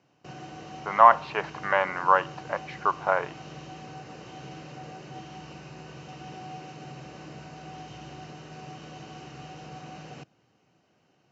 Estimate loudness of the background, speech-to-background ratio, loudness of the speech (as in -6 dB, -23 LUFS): -43.0 LUFS, 19.5 dB, -23.5 LUFS